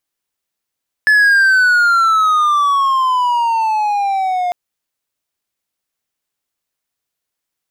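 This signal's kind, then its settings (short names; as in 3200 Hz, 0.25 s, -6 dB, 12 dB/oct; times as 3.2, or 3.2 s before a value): gliding synth tone triangle, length 3.45 s, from 1730 Hz, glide -15.5 st, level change -7.5 dB, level -5 dB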